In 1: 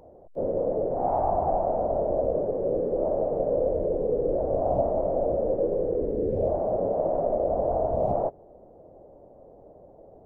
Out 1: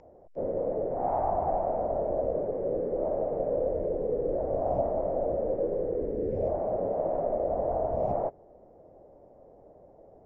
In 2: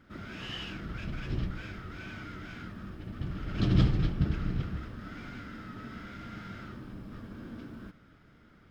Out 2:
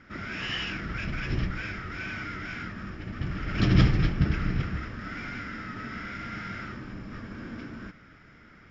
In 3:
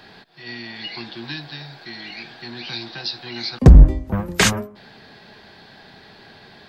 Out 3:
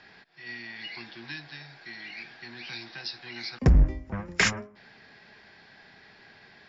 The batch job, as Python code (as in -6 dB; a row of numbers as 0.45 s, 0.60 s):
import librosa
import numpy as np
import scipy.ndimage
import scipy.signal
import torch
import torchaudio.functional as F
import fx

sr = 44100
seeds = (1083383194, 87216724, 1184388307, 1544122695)

y = scipy.signal.sosfilt(scipy.signal.cheby1(6, 9, 7300.0, 'lowpass', fs=sr, output='sos'), x)
y = y * 10.0 ** (-30 / 20.0) / np.sqrt(np.mean(np.square(y)))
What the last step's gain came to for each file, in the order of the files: +5.0 dB, +12.5 dB, -2.5 dB